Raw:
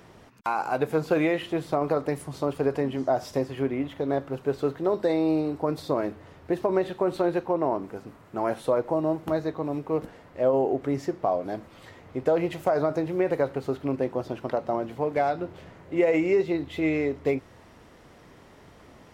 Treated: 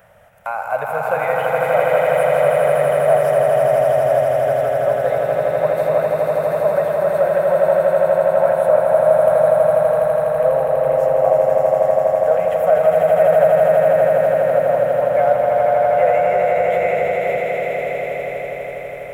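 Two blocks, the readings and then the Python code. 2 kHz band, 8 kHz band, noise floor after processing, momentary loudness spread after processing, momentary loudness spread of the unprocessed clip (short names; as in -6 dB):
+11.5 dB, n/a, -28 dBFS, 8 LU, 8 LU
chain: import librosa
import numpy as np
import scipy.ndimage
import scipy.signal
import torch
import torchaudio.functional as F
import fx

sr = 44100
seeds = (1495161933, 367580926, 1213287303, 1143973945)

y = fx.curve_eq(x, sr, hz=(100.0, 210.0, 330.0, 580.0, 1000.0, 1500.0, 2200.0, 3100.0, 4500.0, 12000.0), db=(0, -6, -26, 12, -2, 7, 2, -1, -12, 10))
y = fx.echo_swell(y, sr, ms=82, loudest=8, wet_db=-4)
y = y * 10.0 ** (-1.0 / 20.0)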